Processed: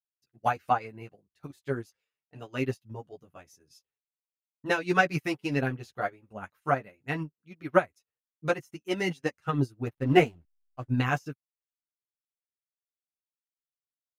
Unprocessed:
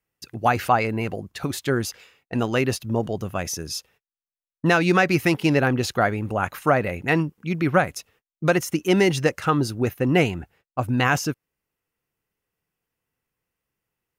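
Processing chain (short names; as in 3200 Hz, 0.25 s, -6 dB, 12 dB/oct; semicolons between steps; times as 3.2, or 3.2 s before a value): 9.87–10.88 backlash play -32.5 dBFS; chorus voices 4, 0.37 Hz, delay 11 ms, depth 4.4 ms; upward expander 2.5:1, over -37 dBFS; gain +2 dB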